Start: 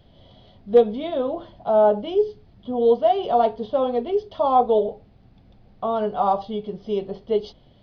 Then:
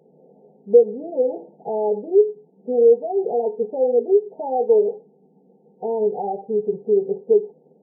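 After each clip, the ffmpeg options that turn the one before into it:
-af "acompressor=threshold=-26dB:ratio=2,afftfilt=real='re*between(b*sr/4096,140,920)':imag='im*between(b*sr/4096,140,920)':win_size=4096:overlap=0.75,superequalizer=7b=3.55:8b=0.631"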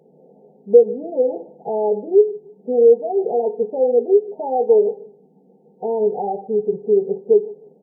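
-filter_complex "[0:a]asplit=2[a][b];[b]adelay=153,lowpass=f=800:p=1,volume=-19dB,asplit=2[c][d];[d]adelay=153,lowpass=f=800:p=1,volume=0.29[e];[a][c][e]amix=inputs=3:normalize=0,volume=2dB"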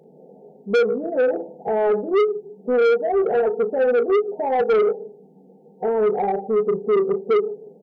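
-filter_complex "[0:a]asplit=2[a][b];[b]adelay=36,volume=-10.5dB[c];[a][c]amix=inputs=2:normalize=0,asoftclip=type=tanh:threshold=-17dB,volume=3dB"

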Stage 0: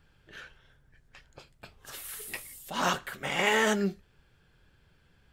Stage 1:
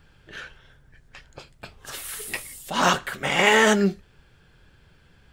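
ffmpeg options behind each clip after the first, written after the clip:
-af "equalizer=f=13k:t=o:w=0.25:g=-7.5,volume=8dB"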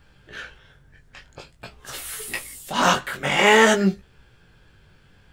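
-af "flanger=delay=15.5:depth=5.9:speed=0.49,volume=4.5dB"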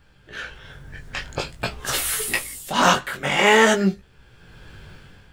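-af "dynaudnorm=f=190:g=7:m=15.5dB,volume=-1dB"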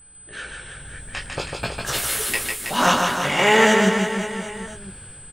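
-filter_complex "[0:a]aeval=exprs='val(0)+0.00562*sin(2*PI*8100*n/s)':c=same,asplit=2[a][b];[b]aecho=0:1:150|322.5|520.9|749|1011:0.631|0.398|0.251|0.158|0.1[c];[a][c]amix=inputs=2:normalize=0,volume=-1.5dB"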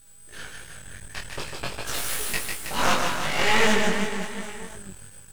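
-af "aeval=exprs='max(val(0),0)':c=same,flanger=delay=19:depth=3.7:speed=2.7,acrusher=bits=7:dc=4:mix=0:aa=0.000001,volume=2.5dB"

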